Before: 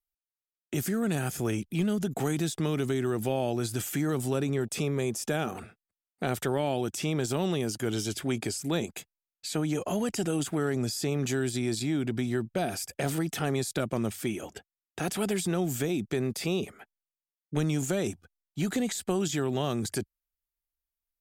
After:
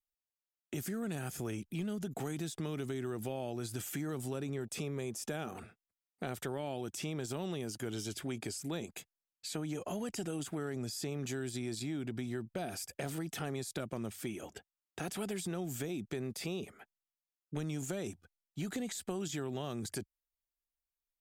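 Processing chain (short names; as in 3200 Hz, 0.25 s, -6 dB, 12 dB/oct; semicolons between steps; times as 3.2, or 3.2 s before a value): compressor 2:1, threshold -32 dBFS, peak gain reduction 5.5 dB; gain -5.5 dB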